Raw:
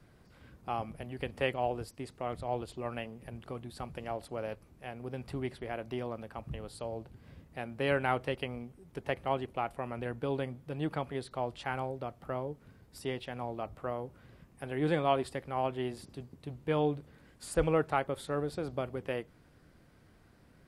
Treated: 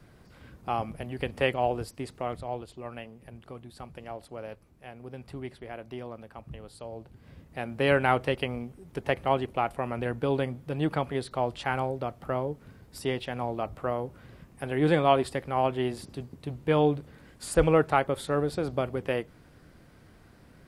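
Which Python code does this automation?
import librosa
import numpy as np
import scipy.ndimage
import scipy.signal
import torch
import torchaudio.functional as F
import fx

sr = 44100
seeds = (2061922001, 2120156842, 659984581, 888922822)

y = fx.gain(x, sr, db=fx.line((2.17, 5.5), (2.64, -2.0), (6.84, -2.0), (7.76, 6.5)))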